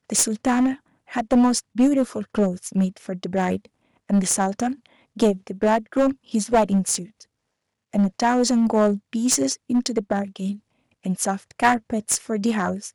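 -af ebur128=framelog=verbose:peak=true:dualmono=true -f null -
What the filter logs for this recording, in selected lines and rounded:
Integrated loudness:
  I:         -19.1 LUFS
  Threshold: -29.5 LUFS
Loudness range:
  LRA:         2.3 LU
  Threshold: -39.8 LUFS
  LRA low:   -21.1 LUFS
  LRA high:  -18.8 LUFS
True peak:
  Peak:       -3.3 dBFS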